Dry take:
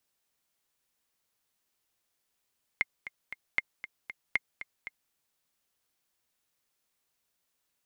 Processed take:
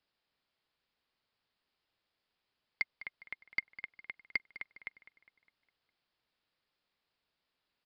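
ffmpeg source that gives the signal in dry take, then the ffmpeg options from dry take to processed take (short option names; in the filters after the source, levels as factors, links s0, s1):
-f lavfi -i "aevalsrc='pow(10,(-12.5-13.5*gte(mod(t,3*60/233),60/233))/20)*sin(2*PI*2120*mod(t,60/233))*exp(-6.91*mod(t,60/233)/0.03)':d=2.31:s=44100"
-filter_complex "[0:a]aresample=11025,asoftclip=type=hard:threshold=0.0794,aresample=44100,asplit=2[s0][s1];[s1]adelay=204,lowpass=f=4000:p=1,volume=0.178,asplit=2[s2][s3];[s3]adelay=204,lowpass=f=4000:p=1,volume=0.52,asplit=2[s4][s5];[s5]adelay=204,lowpass=f=4000:p=1,volume=0.52,asplit=2[s6][s7];[s7]adelay=204,lowpass=f=4000:p=1,volume=0.52,asplit=2[s8][s9];[s9]adelay=204,lowpass=f=4000:p=1,volume=0.52[s10];[s0][s2][s4][s6][s8][s10]amix=inputs=6:normalize=0"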